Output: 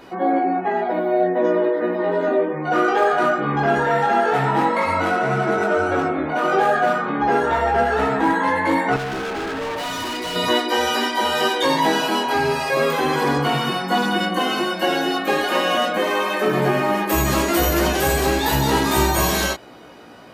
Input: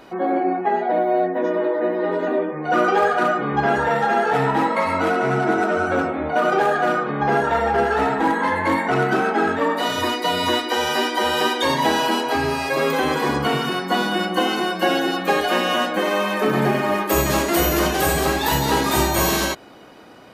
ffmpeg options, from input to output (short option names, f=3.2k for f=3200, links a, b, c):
-filter_complex "[0:a]asplit=2[a][b];[b]alimiter=limit=-15.5dB:level=0:latency=1,volume=-2.5dB[c];[a][c]amix=inputs=2:normalize=0,flanger=delay=15:depth=5.7:speed=0.11,asettb=1/sr,asplit=3[d][e][f];[d]atrim=end=8.964[g];[e]atrim=start=8.96:end=10.36,asetpts=PTS-STARTPTS,afade=t=in:d=0.004:c=qsin,afade=t=out:st=1.396:d=0.004:c=qsin,asoftclip=type=hard:threshold=-24.5dB[h];[f]atrim=start=10.356[i];[g][h]acrossfade=d=0.004:c1=hsin:c2=qsin[j];[j][i]acrossfade=d=0.004:c1=qsin:c2=hsin"